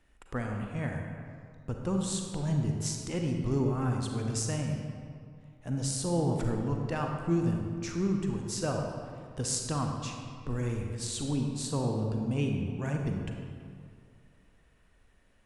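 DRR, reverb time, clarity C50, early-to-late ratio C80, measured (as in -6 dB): 2.0 dB, 2.2 s, 2.5 dB, 4.0 dB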